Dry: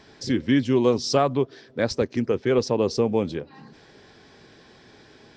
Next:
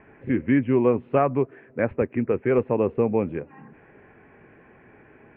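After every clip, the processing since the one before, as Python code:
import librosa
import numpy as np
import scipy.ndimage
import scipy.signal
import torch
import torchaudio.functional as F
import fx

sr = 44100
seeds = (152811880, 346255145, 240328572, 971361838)

y = scipy.signal.sosfilt(scipy.signal.butter(12, 2600.0, 'lowpass', fs=sr, output='sos'), x)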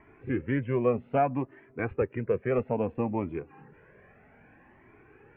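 y = fx.comb_cascade(x, sr, direction='rising', hz=0.62)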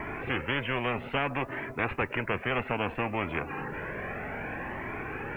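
y = fx.spectral_comp(x, sr, ratio=4.0)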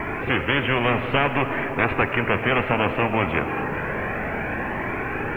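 y = fx.rev_freeverb(x, sr, rt60_s=4.9, hf_ratio=0.3, predelay_ms=30, drr_db=7.5)
y = y * 10.0 ** (8.5 / 20.0)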